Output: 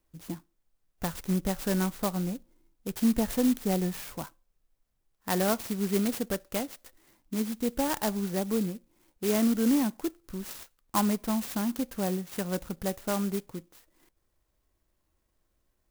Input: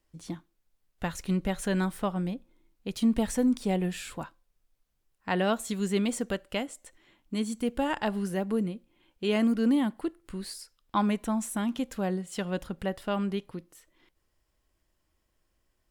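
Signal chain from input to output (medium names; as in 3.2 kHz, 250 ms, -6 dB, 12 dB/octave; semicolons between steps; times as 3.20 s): sampling jitter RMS 0.094 ms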